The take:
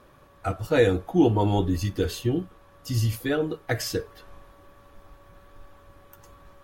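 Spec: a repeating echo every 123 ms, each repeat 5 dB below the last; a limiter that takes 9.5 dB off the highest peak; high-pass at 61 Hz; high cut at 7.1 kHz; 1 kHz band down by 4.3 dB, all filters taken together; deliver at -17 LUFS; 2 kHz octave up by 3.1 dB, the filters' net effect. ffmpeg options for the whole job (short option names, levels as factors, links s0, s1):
-af "highpass=61,lowpass=7100,equalizer=f=1000:t=o:g=-7.5,equalizer=f=2000:t=o:g=6.5,alimiter=limit=0.141:level=0:latency=1,aecho=1:1:123|246|369|492|615|738|861:0.562|0.315|0.176|0.0988|0.0553|0.031|0.0173,volume=3.35"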